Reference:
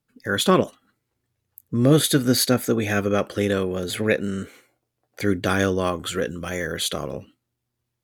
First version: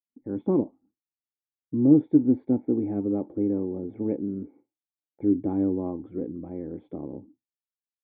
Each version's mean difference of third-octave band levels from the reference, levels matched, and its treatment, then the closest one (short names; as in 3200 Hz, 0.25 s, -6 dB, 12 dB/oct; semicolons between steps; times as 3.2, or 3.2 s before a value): 14.5 dB: vocal tract filter u; expander -56 dBFS; gain +4.5 dB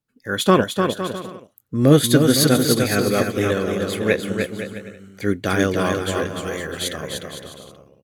6.0 dB: bouncing-ball echo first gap 0.3 s, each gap 0.7×, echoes 5; upward expander 1.5:1, over -32 dBFS; gain +4 dB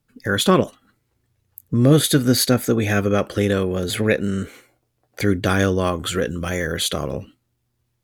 1.0 dB: low shelf 85 Hz +10 dB; in parallel at -2 dB: compressor, threshold -28 dBFS, peak gain reduction 17 dB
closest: third